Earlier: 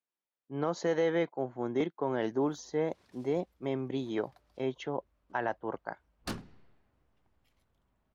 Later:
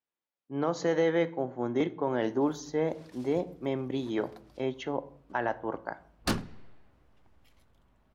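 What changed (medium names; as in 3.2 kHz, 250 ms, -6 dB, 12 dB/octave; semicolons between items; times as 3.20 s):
background +8.0 dB; reverb: on, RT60 0.60 s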